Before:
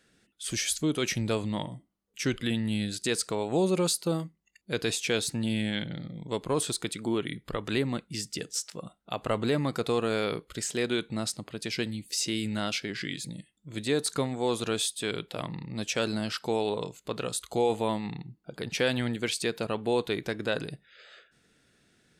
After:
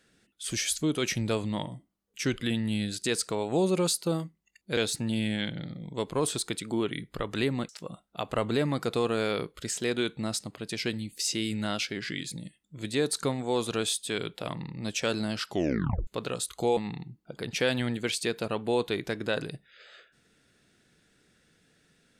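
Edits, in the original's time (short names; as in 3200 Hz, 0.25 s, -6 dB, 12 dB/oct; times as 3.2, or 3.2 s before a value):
4.77–5.11 cut
8.03–8.62 cut
16.41 tape stop 0.59 s
17.7–17.96 cut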